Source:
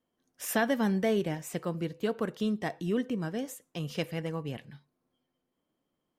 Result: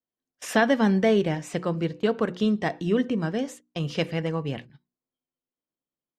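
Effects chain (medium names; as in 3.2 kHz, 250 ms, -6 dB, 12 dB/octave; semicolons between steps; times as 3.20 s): gate -45 dBFS, range -22 dB; low-pass 5.9 kHz 12 dB/octave; hum notches 60/120/180/240/300/360 Hz; trim +7 dB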